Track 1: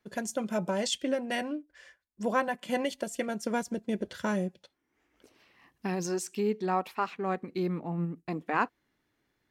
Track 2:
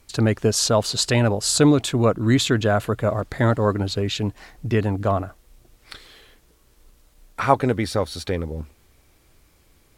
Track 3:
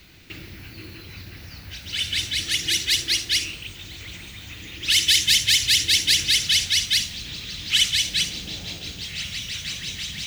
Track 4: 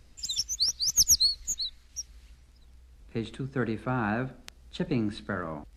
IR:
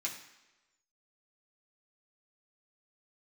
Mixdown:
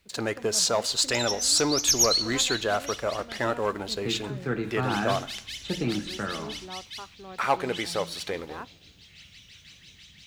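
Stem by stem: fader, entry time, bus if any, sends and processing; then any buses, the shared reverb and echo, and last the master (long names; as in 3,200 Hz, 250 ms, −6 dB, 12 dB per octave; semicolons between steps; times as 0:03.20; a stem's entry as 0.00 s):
−12.5 dB, 0.00 s, no send, no processing
−10.0 dB, 0.00 s, send −13 dB, low-shelf EQ 390 Hz −7 dB; leveller curve on the samples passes 2; bass and treble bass −10 dB, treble +4 dB
−18.0 dB, 0.00 s, no send, no processing
−1.0 dB, 0.90 s, send −3.5 dB, no processing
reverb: on, RT60 1.1 s, pre-delay 3 ms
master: high-shelf EQ 5,800 Hz −7 dB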